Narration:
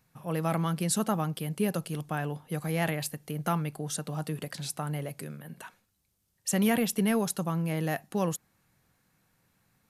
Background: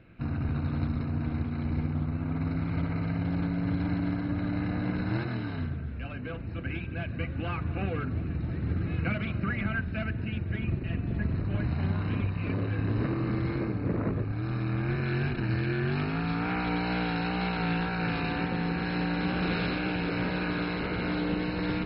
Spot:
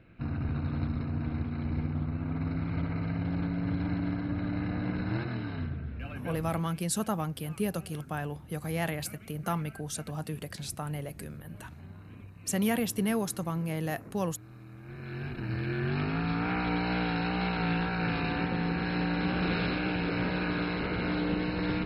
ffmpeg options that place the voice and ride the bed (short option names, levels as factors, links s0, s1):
-filter_complex "[0:a]adelay=6000,volume=0.75[s0];[1:a]volume=6.31,afade=t=out:st=6.43:d=0.24:silence=0.149624,afade=t=in:st=14.82:d=1.27:silence=0.125893[s1];[s0][s1]amix=inputs=2:normalize=0"